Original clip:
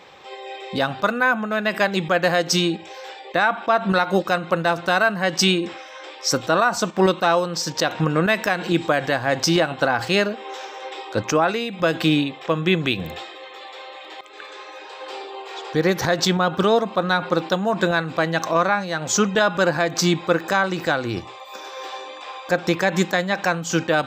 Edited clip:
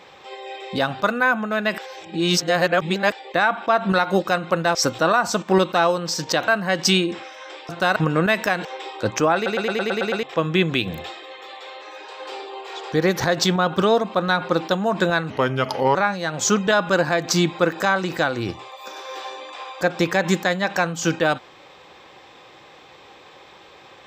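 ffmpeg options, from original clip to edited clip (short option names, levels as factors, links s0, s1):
-filter_complex "[0:a]asplit=19[s0][s1][s2][s3][s4][s5][s6][s7][s8][s9][s10][s11][s12][s13][s14][s15][s16][s17][s18];[s0]atrim=end=1.782[s19];[s1]atrim=start=1.778:end=3.122,asetpts=PTS-STARTPTS,areverse[s20];[s2]atrim=start=3.118:end=4.752[s21];[s3]atrim=start=6.228:end=7.962[s22];[s4]atrim=start=5.018:end=6.232[s23];[s5]atrim=start=4.748:end=5.022[s24];[s6]atrim=start=7.958:end=8.652[s25];[s7]atrim=start=10.768:end=11.582[s26];[s8]atrim=start=11.468:end=11.582[s27];[s9]atrim=start=11.468:end=11.582[s28];[s10]atrim=start=11.468:end=11.582[s29];[s11]atrim=start=11.468:end=11.582[s30];[s12]atrim=start=11.468:end=11.582[s31];[s13]atrim=start=11.468:end=11.582[s32];[s14]atrim=start=11.468:end=11.582[s33];[s15]atrim=start=12.348:end=13.942[s34];[s16]atrim=start=14.628:end=18.114[s35];[s17]atrim=start=18.11:end=18.63,asetpts=PTS-STARTPTS,asetrate=35280,aresample=44100[s36];[s18]atrim=start=18.626[s37];[s19][s20]acrossfade=d=0.004:c1=hsin:c2=hsin[s38];[s38][s21]acrossfade=d=0.004:c1=hsin:c2=hsin[s39];[s39][s22]acrossfade=d=0.004:c1=hsin:c2=hsin[s40];[s40][s23]acrossfade=d=0.004:c1=hsin:c2=hsin[s41];[s41][s24]acrossfade=d=0.004:c1=hsin:c2=hsin[s42];[s42][s25]acrossfade=d=0.004:c1=hsin:c2=hsin[s43];[s43][s26]acrossfade=d=0.004:c1=hsin:c2=hsin[s44];[s44][s27]acrossfade=d=0.004:c1=hsin:c2=hsin[s45];[s45][s28]acrossfade=d=0.004:c1=hsin:c2=hsin[s46];[s46][s29]acrossfade=d=0.004:c1=hsin:c2=hsin[s47];[s47][s30]acrossfade=d=0.004:c1=hsin:c2=hsin[s48];[s48][s31]acrossfade=d=0.004:c1=hsin:c2=hsin[s49];[s49][s32]acrossfade=d=0.004:c1=hsin:c2=hsin[s50];[s50][s33]acrossfade=d=0.004:c1=hsin:c2=hsin[s51];[s51][s34]acrossfade=d=0.004:c1=hsin:c2=hsin[s52];[s52][s35]acrossfade=d=0.004:c1=hsin:c2=hsin[s53];[s53][s36]acrossfade=d=0.004:c1=hsin:c2=hsin[s54];[s54][s37]acrossfade=d=0.004:c1=hsin:c2=hsin"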